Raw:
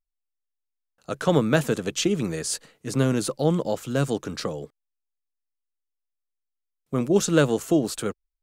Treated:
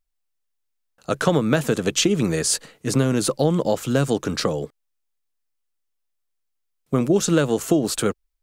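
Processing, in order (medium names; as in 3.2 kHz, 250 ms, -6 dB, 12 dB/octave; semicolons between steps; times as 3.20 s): compression 6:1, threshold -22 dBFS, peak gain reduction 9 dB; trim +7.5 dB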